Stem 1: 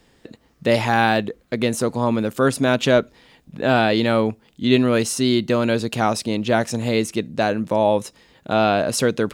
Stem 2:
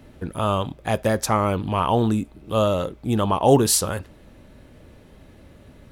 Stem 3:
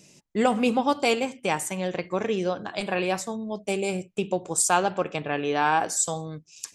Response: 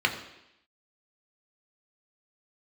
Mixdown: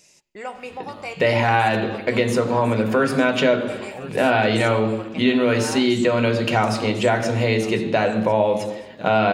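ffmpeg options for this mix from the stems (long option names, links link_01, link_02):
-filter_complex "[0:a]adelay=550,volume=-1.5dB,asplit=3[link_01][link_02][link_03];[link_02]volume=-5dB[link_04];[link_03]volume=-19dB[link_05];[1:a]adelay=500,volume=-12.5dB[link_06];[2:a]equalizer=frequency=190:width_type=o:width=2.2:gain=-15,volume=1.5dB,asplit=3[link_07][link_08][link_09];[link_08]volume=-23.5dB[link_10];[link_09]volume=-16dB[link_11];[link_06][link_07]amix=inputs=2:normalize=0,acompressor=threshold=-43dB:ratio=2,volume=0dB[link_12];[3:a]atrim=start_sample=2205[link_13];[link_04][link_10]amix=inputs=2:normalize=0[link_14];[link_14][link_13]afir=irnorm=-1:irlink=0[link_15];[link_05][link_11]amix=inputs=2:normalize=0,aecho=0:1:1050|2100|3150|4200:1|0.24|0.0576|0.0138[link_16];[link_01][link_12][link_15][link_16]amix=inputs=4:normalize=0,acompressor=threshold=-17dB:ratio=2.5"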